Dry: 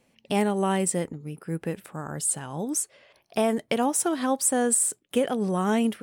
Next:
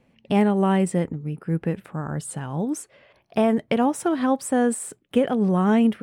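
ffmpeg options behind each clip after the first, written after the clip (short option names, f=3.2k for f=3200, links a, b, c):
-af "bass=f=250:g=6,treble=f=4k:g=-13,volume=2.5dB"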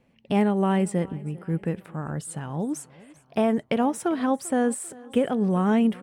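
-af "aecho=1:1:394|788|1182:0.0794|0.0381|0.0183,volume=-2.5dB"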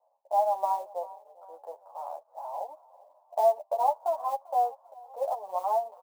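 -filter_complex "[0:a]asuperpass=centerf=770:order=8:qfactor=1.8,acrusher=bits=7:mode=log:mix=0:aa=0.000001,asplit=2[a][b];[b]adelay=10.4,afreqshift=-0.44[c];[a][c]amix=inputs=2:normalize=1,volume=7.5dB"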